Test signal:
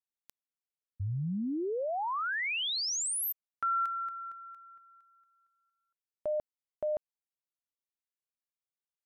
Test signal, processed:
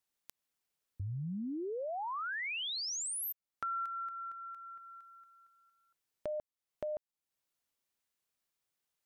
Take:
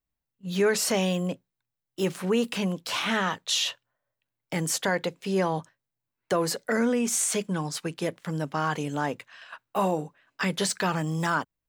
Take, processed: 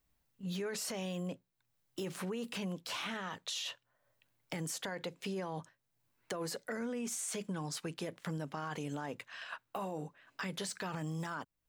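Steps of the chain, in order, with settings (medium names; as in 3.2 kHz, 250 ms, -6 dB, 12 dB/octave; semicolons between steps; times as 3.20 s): peak limiter -25 dBFS; compression 2:1, threshold -58 dBFS; trim +8.5 dB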